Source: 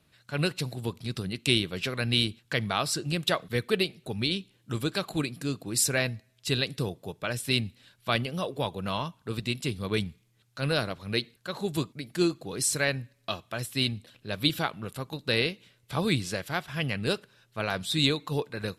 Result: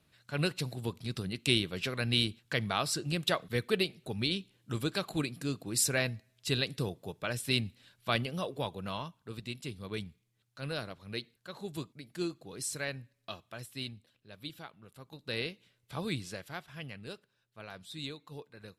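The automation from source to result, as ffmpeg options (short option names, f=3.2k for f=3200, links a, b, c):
-af "volume=5.5dB,afade=t=out:st=8.27:d=1.06:silence=0.473151,afade=t=out:st=13.46:d=0.83:silence=0.398107,afade=t=in:st=14.89:d=0.54:silence=0.354813,afade=t=out:st=16.21:d=0.89:silence=0.421697"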